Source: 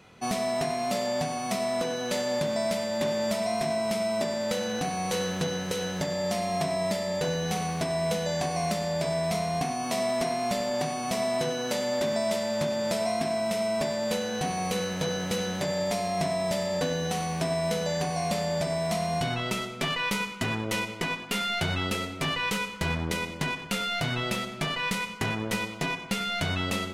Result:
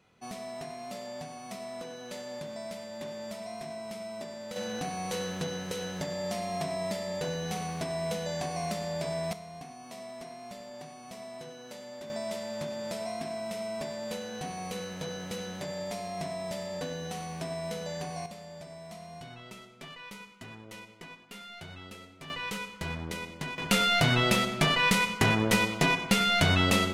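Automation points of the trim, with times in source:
-12 dB
from 4.56 s -5 dB
from 9.33 s -16 dB
from 12.10 s -8 dB
from 18.26 s -17 dB
from 22.30 s -7 dB
from 23.58 s +5 dB

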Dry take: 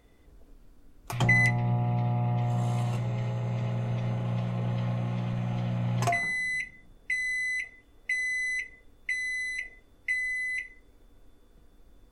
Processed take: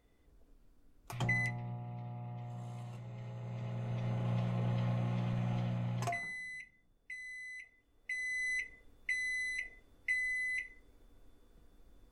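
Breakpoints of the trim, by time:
1.25 s -10 dB
1.82 s -17 dB
3.02 s -17 dB
4.28 s -4.5 dB
5.54 s -4.5 dB
6.66 s -16.5 dB
7.63 s -16.5 dB
8.53 s -5 dB

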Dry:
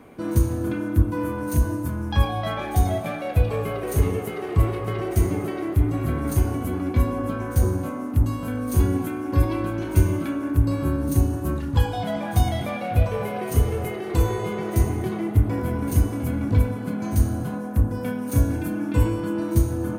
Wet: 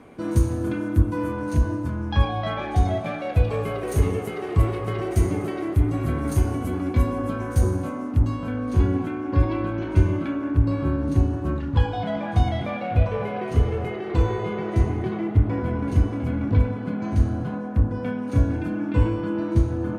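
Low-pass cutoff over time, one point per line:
1.16 s 9.1 kHz
1.60 s 4.8 kHz
2.94 s 4.8 kHz
3.75 s 9.6 kHz
7.76 s 9.6 kHz
8.58 s 3.6 kHz

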